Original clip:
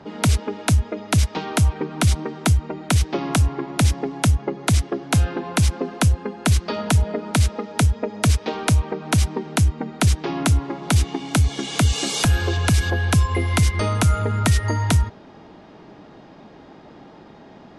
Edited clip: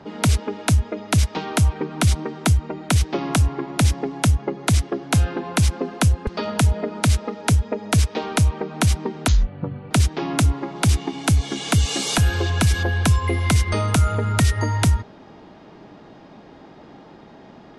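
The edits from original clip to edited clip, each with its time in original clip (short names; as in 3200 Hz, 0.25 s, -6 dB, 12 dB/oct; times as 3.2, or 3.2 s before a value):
6.27–6.58 cut
9.59–9.98 speed 62%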